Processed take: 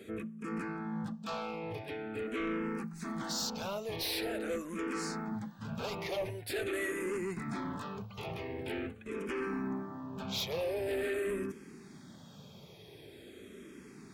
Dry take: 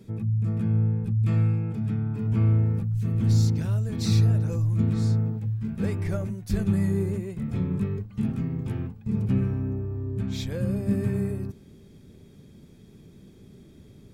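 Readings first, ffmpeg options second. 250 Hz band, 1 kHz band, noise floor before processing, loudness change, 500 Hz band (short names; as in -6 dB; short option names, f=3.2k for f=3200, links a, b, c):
-10.5 dB, +5.5 dB, -51 dBFS, -11.5 dB, 0.0 dB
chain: -filter_complex "[0:a]afftfilt=real='re*lt(hypot(re,im),0.282)':imag='im*lt(hypot(re,im),0.282)':win_size=1024:overlap=0.75,highpass=f=1.2k:p=1,highshelf=f=3.7k:g=-10.5,asplit=2[a][b];[b]aeval=exprs='0.0398*sin(PI/2*5.01*val(0)/0.0398)':c=same,volume=-4dB[c];[a][c]amix=inputs=2:normalize=0,asplit=2[d][e];[e]afreqshift=-0.45[f];[d][f]amix=inputs=2:normalize=1"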